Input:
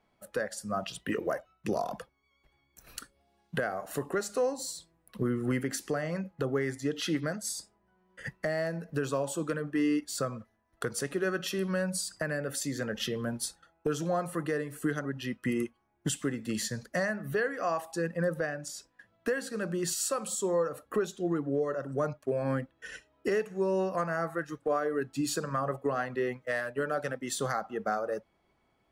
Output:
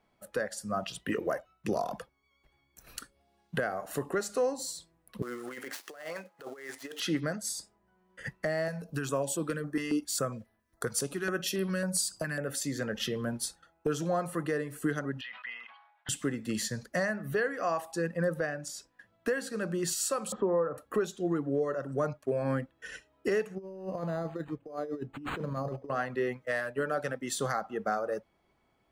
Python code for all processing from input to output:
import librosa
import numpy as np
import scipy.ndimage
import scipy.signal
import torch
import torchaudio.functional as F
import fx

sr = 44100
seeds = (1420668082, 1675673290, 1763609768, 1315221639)

y = fx.chain(x, sr, fx.dead_time(dead_ms=0.061),
    fx.highpass(hz=580.0, slope=12),
    fx.over_compress(threshold_db=-40.0, ratio=-0.5), at=(5.22, 7.0))
y = fx.chain(y, sr, fx.high_shelf(hz=4700.0, db=6.0),
    fx.filter_held_notch(hz=7.3, low_hz=340.0, high_hz=6700.0), at=(8.68, 12.48))
y = fx.chain(y, sr, fx.ellip_bandpass(low_hz=780.0, high_hz=3800.0, order=3, stop_db=40),
    fx.sustainer(db_per_s=65.0), at=(15.21, 16.09))
y = fx.chain(y, sr, fx.lowpass(hz=1700.0, slope=24),
    fx.band_squash(depth_pct=70), at=(20.32, 20.78))
y = fx.chain(y, sr, fx.peak_eq(hz=1500.0, db=-13.0, octaves=1.3),
    fx.over_compress(threshold_db=-35.0, ratio=-0.5),
    fx.resample_linear(factor=8), at=(23.55, 25.9))